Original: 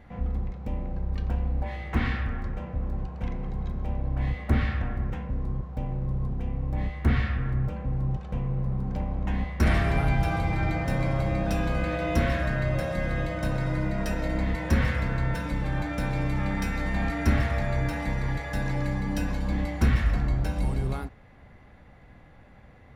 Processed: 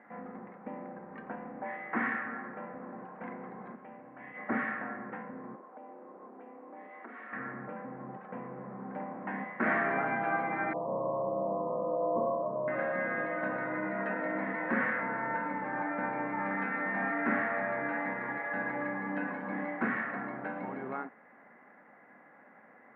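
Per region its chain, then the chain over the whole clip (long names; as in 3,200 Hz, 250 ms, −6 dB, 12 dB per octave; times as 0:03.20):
0:03.75–0:04.37: transistor ladder low-pass 3,500 Hz, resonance 50% + envelope flattener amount 50%
0:05.55–0:07.33: high-pass filter 280 Hz 24 dB per octave + parametric band 1,800 Hz −6 dB 0.8 octaves + downward compressor 5 to 1, threshold −43 dBFS
0:10.73–0:12.68: Butterworth low-pass 1,100 Hz 96 dB per octave + comb filter 1.9 ms, depth 60%
0:15.01–0:16.46: high-shelf EQ 3,200 Hz −8.5 dB + hollow resonant body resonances 890/2,100 Hz, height 8 dB
whole clip: elliptic band-pass filter 220–1,900 Hz, stop band 60 dB; parametric band 1,500 Hz +8 dB 2.3 octaves; level −4.5 dB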